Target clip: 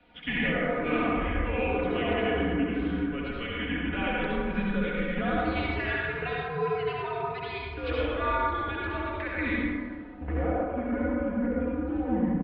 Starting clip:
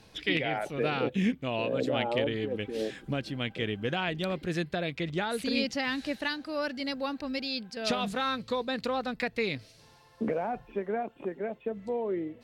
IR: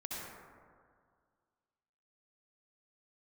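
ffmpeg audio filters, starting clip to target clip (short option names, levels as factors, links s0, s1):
-filter_complex "[0:a]acrossover=split=1100[s0][s1];[s0]volume=23.7,asoftclip=hard,volume=0.0422[s2];[s2][s1]amix=inputs=2:normalize=0,lowshelf=f=86:g=-9.5[s3];[1:a]atrim=start_sample=2205[s4];[s3][s4]afir=irnorm=-1:irlink=0,highpass=f=190:t=q:w=0.5412,highpass=f=190:t=q:w=1.307,lowpass=f=3200:t=q:w=0.5176,lowpass=f=3200:t=q:w=0.7071,lowpass=f=3200:t=q:w=1.932,afreqshift=-150,aecho=1:1:4.1:0.81,volume=1.26"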